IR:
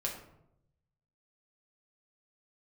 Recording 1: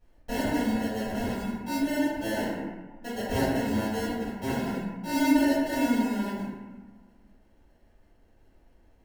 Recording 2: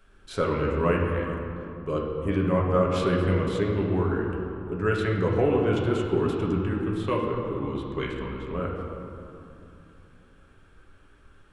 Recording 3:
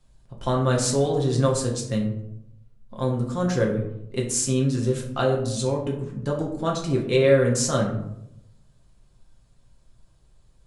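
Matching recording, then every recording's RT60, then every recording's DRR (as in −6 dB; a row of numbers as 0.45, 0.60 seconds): 3; 1.4, 2.9, 0.80 seconds; −11.0, −2.0, −2.0 decibels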